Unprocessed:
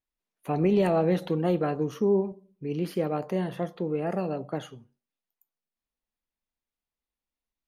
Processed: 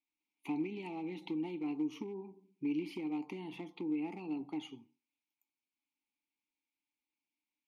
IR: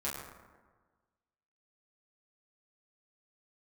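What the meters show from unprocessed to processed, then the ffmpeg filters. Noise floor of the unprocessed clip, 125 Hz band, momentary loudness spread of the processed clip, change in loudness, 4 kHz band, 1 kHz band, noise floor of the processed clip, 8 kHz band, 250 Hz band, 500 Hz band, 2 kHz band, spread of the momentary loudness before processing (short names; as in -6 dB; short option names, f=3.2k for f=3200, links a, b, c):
under -85 dBFS, -20.5 dB, 10 LU, -12.0 dB, -7.5 dB, -15.5 dB, under -85 dBFS, n/a, -8.0 dB, -19.5 dB, -9.5 dB, 13 LU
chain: -filter_complex "[0:a]acompressor=threshold=-33dB:ratio=10,asoftclip=type=hard:threshold=-29.5dB,aexciter=amount=4.6:drive=5.4:freq=2.2k,asplit=3[a][b][c];[a]bandpass=f=300:t=q:w=8,volume=0dB[d];[b]bandpass=f=870:t=q:w=8,volume=-6dB[e];[c]bandpass=f=2.24k:t=q:w=8,volume=-9dB[f];[d][e][f]amix=inputs=3:normalize=0,volume=8dB"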